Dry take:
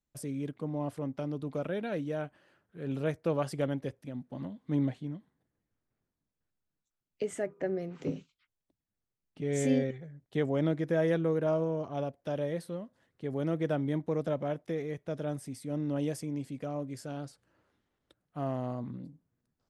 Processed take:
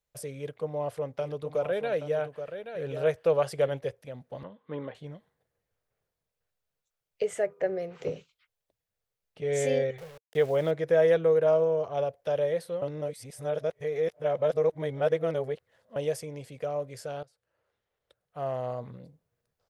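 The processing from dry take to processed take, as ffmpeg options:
-filter_complex "[0:a]asplit=3[s0][s1][s2];[s0]afade=t=out:st=1.21:d=0.02[s3];[s1]aecho=1:1:827:0.355,afade=t=in:st=1.21:d=0.02,afade=t=out:st=3.77:d=0.02[s4];[s2]afade=t=in:st=3.77:d=0.02[s5];[s3][s4][s5]amix=inputs=3:normalize=0,asettb=1/sr,asplit=3[s6][s7][s8];[s6]atrim=end=4.434[s9];[s7]atrim=start=4.43:end=4.95,asetpts=PTS-STARTPTS,afade=t=in:d=0.004:c=qsin,afade=t=out:st=0.516:d=0.004:c=qsin,highpass=130,equalizer=f=130:t=q:w=4:g=-10,equalizer=f=680:t=q:w=4:g=-9,equalizer=f=1100:t=q:w=4:g=6,equalizer=f=2200:t=q:w=4:g=-6,lowpass=f=3100:w=0.5412,lowpass=f=3100:w=1.3066[s10];[s8]atrim=start=4.946[s11];[s9][s10]acrossfade=d=0.004:c1=hsin:c2=qsin[s12];[s12][s11]acrossfade=d=0.004:c1=qsin:c2=hsin,asettb=1/sr,asplit=3[s13][s14][s15];[s13]atrim=end=9.984[s16];[s14]atrim=start=9.98:end=10.71,asetpts=PTS-STARTPTS,afade=t=in:d=0.004:c=qsin,afade=t=out:st=0.726:d=0.004:c=qsin,aeval=exprs='val(0)*gte(abs(val(0)),0.00473)':c=same[s17];[s15]atrim=start=10.706[s18];[s16][s17]acrossfade=d=0.004:c1=hsin:c2=qsin[s19];[s19][s18]acrossfade=d=0.004:c1=qsin:c2=hsin,asplit=4[s20][s21][s22][s23];[s20]atrim=end=12.822[s24];[s21]atrim=start=12.818:end=15.962,asetpts=PTS-STARTPTS,areverse[s25];[s22]atrim=start=15.958:end=17.23,asetpts=PTS-STARTPTS,afade=t=out:st=1.268:d=0.004:c=hsin:silence=0.105925[s26];[s23]atrim=start=17.23,asetpts=PTS-STARTPTS,afade=t=in:d=1.56:silence=0.105925[s27];[s24][s25]acrossfade=d=0.004:c1=hsin:c2=hsin[s28];[s26][s27]concat=n=2:v=0:a=1[s29];[s28][s29]acrossfade=d=0.004:c1=hsin:c2=hsin,firequalizer=gain_entry='entry(110,0);entry(280,-12);entry(460,9);entry(910,3);entry(2300,5);entry(7900,2);entry(11000,4)':delay=0.05:min_phase=1"

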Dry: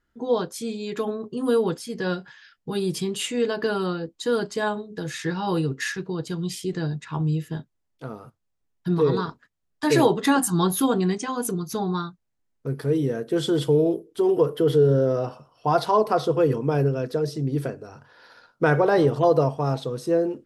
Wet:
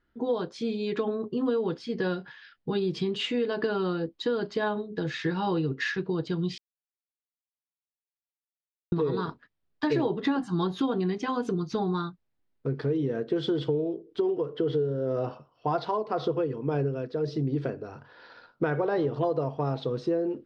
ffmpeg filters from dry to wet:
-filter_complex "[0:a]asettb=1/sr,asplit=3[s0][s1][s2];[s0]atrim=end=9.924[s3];[s1]atrim=start=9.92:end=10.47,asetpts=PTS-STARTPTS,afade=t=in:d=0.004:c=qsin,afade=t=out:st=0.546:d=0.004:c=qsin,lowshelf=f=470:g=5.5[s4];[s2]atrim=start=10.466[s5];[s3][s4]acrossfade=d=0.004:c1=hsin:c2=qsin[s6];[s6][s5]acrossfade=d=0.004:c1=qsin:c2=hsin,asplit=3[s7][s8][s9];[s7]afade=t=out:st=13.64:d=0.02[s10];[s8]tremolo=f=1.9:d=0.59,afade=t=in:st=13.64:d=0.02,afade=t=out:st=17.3:d=0.02[s11];[s9]afade=t=in:st=17.3:d=0.02[s12];[s10][s11][s12]amix=inputs=3:normalize=0,asplit=3[s13][s14][s15];[s13]atrim=end=6.58,asetpts=PTS-STARTPTS,afade=t=out:st=6.576:d=0.004:c=hsin[s16];[s14]atrim=start=6.58:end=8.92,asetpts=PTS-STARTPTS,volume=0[s17];[s15]atrim=start=8.92,asetpts=PTS-STARTPTS,afade=t=in:d=0.004:c=hsin[s18];[s16][s17][s18]concat=n=3:v=0:a=1,lowpass=f=4500:w=0.5412,lowpass=f=4500:w=1.3066,equalizer=f=340:w=1.5:g=3,acompressor=threshold=0.0631:ratio=6"

